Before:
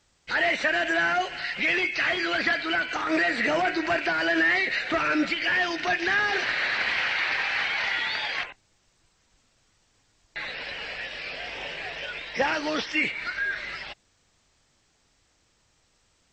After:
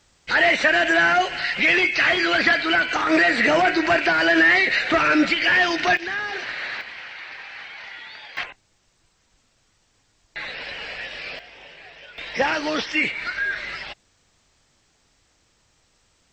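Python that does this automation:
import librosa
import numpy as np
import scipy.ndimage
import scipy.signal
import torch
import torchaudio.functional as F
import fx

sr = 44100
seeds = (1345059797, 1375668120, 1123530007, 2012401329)

y = fx.gain(x, sr, db=fx.steps((0.0, 6.5), (5.97, -3.5), (6.81, -11.0), (8.37, 2.0), (11.39, -9.0), (12.18, 3.5)))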